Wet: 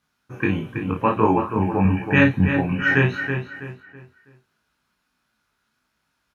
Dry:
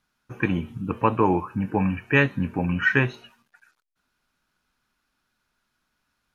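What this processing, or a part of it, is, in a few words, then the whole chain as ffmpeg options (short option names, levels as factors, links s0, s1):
double-tracked vocal: -filter_complex "[0:a]highpass=46,asplit=2[s0][s1];[s1]adelay=32,volume=0.562[s2];[s0][s2]amix=inputs=2:normalize=0,flanger=delay=18:depth=4.1:speed=1.5,asettb=1/sr,asplit=3[s3][s4][s5];[s3]atrim=end=1.854[s6];[s4]atrim=start=1.85:end=2.49,asetpts=PTS-STARTPTS,afade=t=in:d=0.004:c=qsin,afade=t=out:st=0.636:d=0.004:c=qsin,lowshelf=f=120:g=9[s7];[s5]atrim=start=2.486[s8];[s6][s7]acrossfade=d=0.004:c1=hsin:c2=qsin[s9];[s9][s8]acrossfade=d=0.004:c1=qsin:c2=hsin,asplit=2[s10][s11];[s11]adelay=326,lowpass=f=3300:p=1,volume=0.447,asplit=2[s12][s13];[s13]adelay=326,lowpass=f=3300:p=1,volume=0.35,asplit=2[s14][s15];[s15]adelay=326,lowpass=f=3300:p=1,volume=0.35,asplit=2[s16][s17];[s17]adelay=326,lowpass=f=3300:p=1,volume=0.35[s18];[s10][s12][s14][s16][s18]amix=inputs=5:normalize=0,volume=1.58"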